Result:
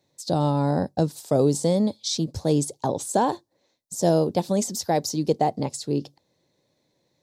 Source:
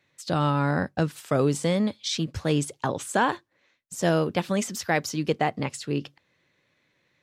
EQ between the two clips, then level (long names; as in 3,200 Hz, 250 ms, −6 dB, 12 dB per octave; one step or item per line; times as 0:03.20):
low-shelf EQ 170 Hz −4.5 dB
flat-topped bell 1,900 Hz −16 dB
+4.0 dB